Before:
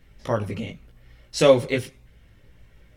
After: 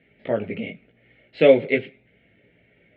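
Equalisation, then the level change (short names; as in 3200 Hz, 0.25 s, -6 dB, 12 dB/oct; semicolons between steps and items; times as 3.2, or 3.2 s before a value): speaker cabinet 180–3300 Hz, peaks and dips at 200 Hz +4 dB, 280 Hz +3 dB, 430 Hz +6 dB, 660 Hz +9 dB, 1000 Hz +9 dB, 2200 Hz +7 dB; fixed phaser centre 2500 Hz, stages 4; 0.0 dB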